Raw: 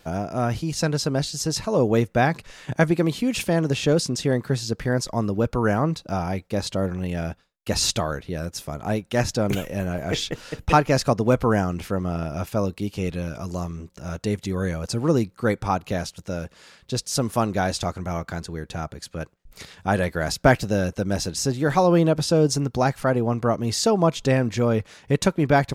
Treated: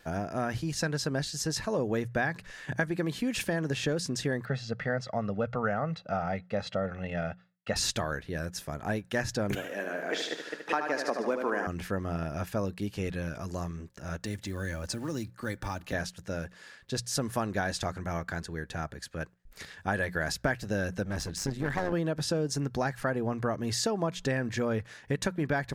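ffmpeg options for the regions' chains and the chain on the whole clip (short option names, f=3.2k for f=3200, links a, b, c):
-filter_complex "[0:a]asettb=1/sr,asplit=3[a][b][c];[a]atrim=end=4.454[d];[b]atrim=start=4.45:end=7.76,asetpts=PTS-STARTPTS,afade=t=in:d=0.004:c=qsin,afade=t=out:st=3.306:d=0.004:c=qsin,highpass=140,lowpass=3.3k,aecho=1:1:1.5:0.75,atrim=end_sample=145971[e];[c]atrim=start=7.756[f];[d][e]acrossfade=d=0.004:c1=hsin:c2=qsin[g];[g][f]acrossfade=d=0.004:c1=qsin:c2=hsin,asettb=1/sr,asplit=3[h][i][j];[h]atrim=end=9.554[k];[i]atrim=start=9.55:end=11.67,asetpts=PTS-STARTPTS,afade=t=in:d=0.004:c=qsin,afade=t=out:st=2.116:d=0.004:c=qsin,highpass=f=270:w=0.5412,highpass=f=270:w=1.3066,highshelf=f=5.3k:g=-7,aecho=1:1:75|150|225|300|375|450|525:0.447|0.241|0.13|0.0703|0.038|0.0205|0.0111,atrim=end_sample=93492[l];[j]atrim=start=11.666[m];[k][l]acrossfade=d=0.004:c1=hsin:c2=qsin[n];[n][m]acrossfade=d=0.004:c1=qsin:c2=hsin,asettb=1/sr,asplit=3[o][p][q];[o]atrim=end=14.224[r];[p]atrim=start=14.22:end=15.93,asetpts=PTS-STARTPTS,afade=t=in:d=0.004:c=qsin,afade=t=out:st=1.706:d=0.004:c=qsin,aecho=1:1:3.4:0.41,atrim=end_sample=75411,acrossover=split=130|3000[s][t][u];[t]acompressor=threshold=-30dB:ratio=3:attack=3.2:release=140:knee=2.83:detection=peak[v];[s][v][u]amix=inputs=3:normalize=0,acrusher=bits=7:mode=log:mix=0:aa=0.000001[w];[q]atrim=start=15.926[x];[r][w]acrossfade=d=0.004:c1=hsin:c2=qsin[y];[y][x]acrossfade=d=0.004:c1=qsin:c2=hsin,asettb=1/sr,asplit=3[z][aa][ab];[z]atrim=end=21.054[ac];[aa]atrim=start=21.05:end=21.93,asetpts=PTS-STARTPTS,afade=t=in:d=0.004:c=qsin,afade=t=out:st=0.876:d=0.004:c=qsin,lowshelf=f=150:g=7,aeval=exprs='clip(val(0),-1,0.0631)':c=same,tremolo=f=100:d=0.621[ad];[ab]atrim=start=21.926[ae];[ac][ad]acrossfade=d=0.004:c1=hsin:c2=qsin[af];[af][ae]acrossfade=d=0.004:c1=qsin:c2=hsin,equalizer=f=1.7k:t=o:w=0.31:g=10.5,bandreject=f=60:t=h:w=6,bandreject=f=120:t=h:w=6,bandreject=f=180:t=h:w=6,acompressor=threshold=-20dB:ratio=6,volume=-5.5dB"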